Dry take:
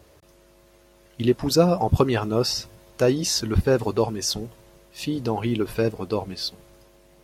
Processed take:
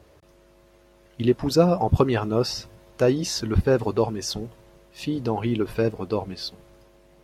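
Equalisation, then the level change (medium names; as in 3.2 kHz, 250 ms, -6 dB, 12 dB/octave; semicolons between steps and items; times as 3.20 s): treble shelf 4.6 kHz -8 dB; 0.0 dB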